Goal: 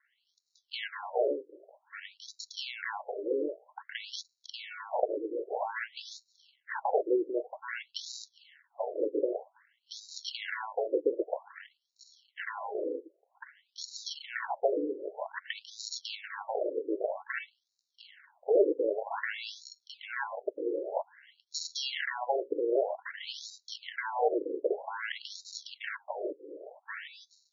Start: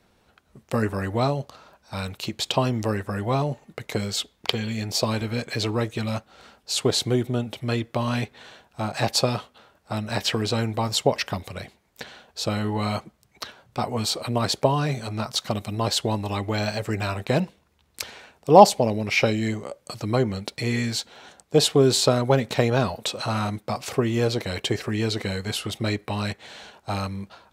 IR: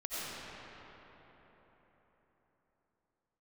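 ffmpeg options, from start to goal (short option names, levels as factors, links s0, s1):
-af "highshelf=f=3600:g=6,alimiter=limit=0.266:level=0:latency=1:release=59,acrusher=samples=36:mix=1:aa=0.000001,afftfilt=real='re*between(b*sr/1024,380*pow(5300/380,0.5+0.5*sin(2*PI*0.52*pts/sr))/1.41,380*pow(5300/380,0.5+0.5*sin(2*PI*0.52*pts/sr))*1.41)':imag='im*between(b*sr/1024,380*pow(5300/380,0.5+0.5*sin(2*PI*0.52*pts/sr))/1.41,380*pow(5300/380,0.5+0.5*sin(2*PI*0.52*pts/sr))*1.41)':win_size=1024:overlap=0.75"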